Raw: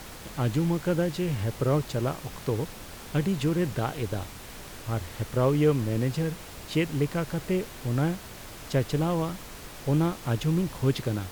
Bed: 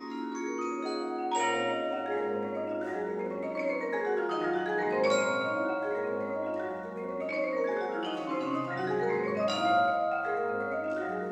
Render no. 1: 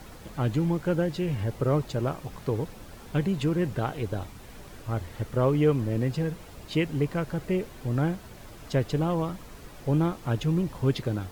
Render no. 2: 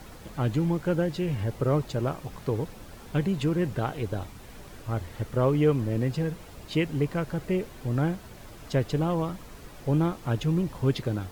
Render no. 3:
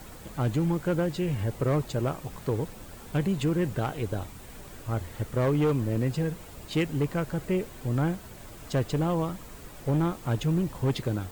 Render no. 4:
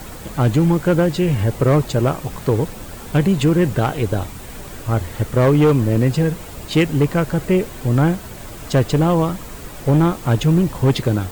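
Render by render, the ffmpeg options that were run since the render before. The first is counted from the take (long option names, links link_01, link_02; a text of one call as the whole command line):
ffmpeg -i in.wav -af "afftdn=noise_reduction=8:noise_floor=-43" out.wav
ffmpeg -i in.wav -af anull out.wav
ffmpeg -i in.wav -af "asoftclip=type=hard:threshold=-20dB,aexciter=amount=2.2:drive=1.2:freq=7200" out.wav
ffmpeg -i in.wav -af "volume=11dB" out.wav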